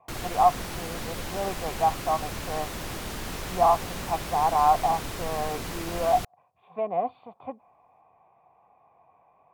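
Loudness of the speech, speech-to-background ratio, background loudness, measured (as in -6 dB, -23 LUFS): -27.0 LUFS, 8.0 dB, -35.0 LUFS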